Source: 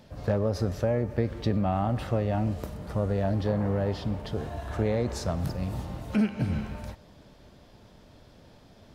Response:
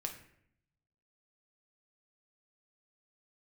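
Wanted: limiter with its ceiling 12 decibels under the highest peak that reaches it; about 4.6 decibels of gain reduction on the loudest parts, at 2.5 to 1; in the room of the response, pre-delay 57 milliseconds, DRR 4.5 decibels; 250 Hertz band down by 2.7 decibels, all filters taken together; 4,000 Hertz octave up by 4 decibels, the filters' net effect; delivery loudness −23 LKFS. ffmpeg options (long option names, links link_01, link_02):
-filter_complex "[0:a]equalizer=frequency=250:width_type=o:gain=-3.5,equalizer=frequency=4000:width_type=o:gain=5,acompressor=threshold=-29dB:ratio=2.5,alimiter=level_in=4.5dB:limit=-24dB:level=0:latency=1,volume=-4.5dB,asplit=2[link_01][link_02];[1:a]atrim=start_sample=2205,adelay=57[link_03];[link_02][link_03]afir=irnorm=-1:irlink=0,volume=-4dB[link_04];[link_01][link_04]amix=inputs=2:normalize=0,volume=14dB"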